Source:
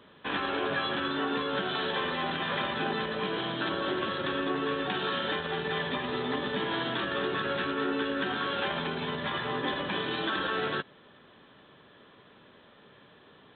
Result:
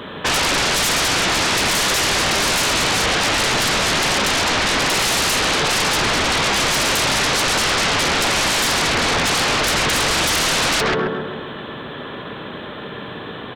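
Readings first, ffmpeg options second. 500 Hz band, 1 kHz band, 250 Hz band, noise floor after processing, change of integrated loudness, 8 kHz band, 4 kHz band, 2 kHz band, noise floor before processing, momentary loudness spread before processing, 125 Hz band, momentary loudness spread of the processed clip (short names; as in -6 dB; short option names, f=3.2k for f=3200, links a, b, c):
+9.0 dB, +12.0 dB, +8.0 dB, -32 dBFS, +14.5 dB, n/a, +17.0 dB, +14.5 dB, -57 dBFS, 2 LU, +13.0 dB, 15 LU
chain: -filter_complex "[0:a]asplit=2[a][b];[b]adelay=134,lowpass=f=1.5k:p=1,volume=-3dB,asplit=2[c][d];[d]adelay=134,lowpass=f=1.5k:p=1,volume=0.53,asplit=2[e][f];[f]adelay=134,lowpass=f=1.5k:p=1,volume=0.53,asplit=2[g][h];[h]adelay=134,lowpass=f=1.5k:p=1,volume=0.53,asplit=2[i][j];[j]adelay=134,lowpass=f=1.5k:p=1,volume=0.53,asplit=2[k][l];[l]adelay=134,lowpass=f=1.5k:p=1,volume=0.53,asplit=2[m][n];[n]adelay=134,lowpass=f=1.5k:p=1,volume=0.53[o];[a][c][e][g][i][k][m][o]amix=inputs=8:normalize=0,aeval=exprs='0.133*sin(PI/2*7.08*val(0)/0.133)':c=same,volume=2.5dB"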